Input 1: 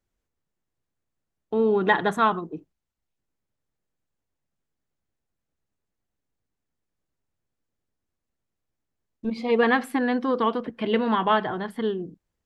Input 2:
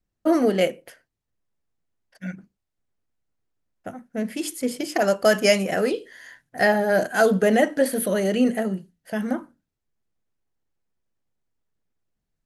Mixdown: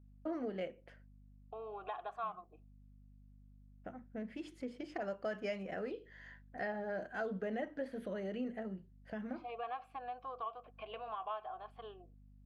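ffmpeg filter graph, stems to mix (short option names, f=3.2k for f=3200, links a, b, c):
-filter_complex "[0:a]asplit=3[a][b][c];[a]bandpass=f=730:t=q:w=8,volume=0dB[d];[b]bandpass=f=1.09k:t=q:w=8,volume=-6dB[e];[c]bandpass=f=2.44k:t=q:w=8,volume=-9dB[f];[d][e][f]amix=inputs=3:normalize=0,equalizer=f=200:t=o:w=2:g=-14.5,volume=0dB,asplit=2[g][h];[1:a]lowpass=2.7k,aeval=exprs='val(0)+0.00355*(sin(2*PI*50*n/s)+sin(2*PI*2*50*n/s)/2+sin(2*PI*3*50*n/s)/3+sin(2*PI*4*50*n/s)/4+sin(2*PI*5*50*n/s)/5)':c=same,volume=-10dB[i];[h]apad=whole_len=549056[j];[i][j]sidechaincompress=threshold=-35dB:ratio=8:attack=16:release=402[k];[g][k]amix=inputs=2:normalize=0,acompressor=threshold=-45dB:ratio=2"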